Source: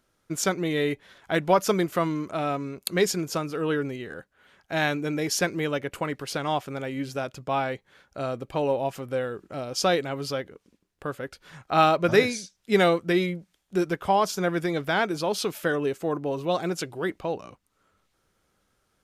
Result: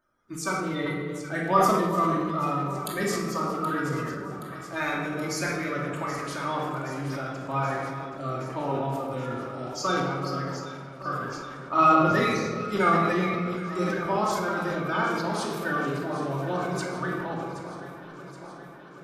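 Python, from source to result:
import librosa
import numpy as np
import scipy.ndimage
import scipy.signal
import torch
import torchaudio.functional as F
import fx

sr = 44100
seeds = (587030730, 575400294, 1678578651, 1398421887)

y = fx.spec_quant(x, sr, step_db=30)
y = fx.peak_eq(y, sr, hz=1200.0, db=9.5, octaves=0.33)
y = fx.echo_alternate(y, sr, ms=387, hz=1400.0, feedback_pct=82, wet_db=-11.0)
y = fx.room_shoebox(y, sr, seeds[0], volume_m3=1200.0, walls='mixed', distance_m=2.6)
y = fx.sustainer(y, sr, db_per_s=27.0)
y = y * 10.0 ** (-9.0 / 20.0)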